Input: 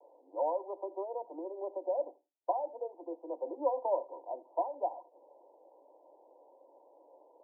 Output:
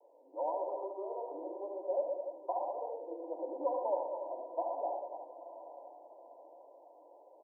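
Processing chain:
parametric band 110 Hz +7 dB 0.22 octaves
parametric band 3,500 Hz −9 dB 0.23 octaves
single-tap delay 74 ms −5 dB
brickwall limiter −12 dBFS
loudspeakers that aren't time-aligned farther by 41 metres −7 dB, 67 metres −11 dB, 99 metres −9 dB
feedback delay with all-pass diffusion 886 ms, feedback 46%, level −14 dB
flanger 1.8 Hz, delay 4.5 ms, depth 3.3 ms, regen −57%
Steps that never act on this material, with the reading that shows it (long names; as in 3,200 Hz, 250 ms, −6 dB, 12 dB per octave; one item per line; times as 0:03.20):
parametric band 110 Hz: nothing at its input below 250 Hz
parametric band 3,500 Hz: nothing at its input above 1,100 Hz
brickwall limiter −12 dBFS: peak of its input −18.5 dBFS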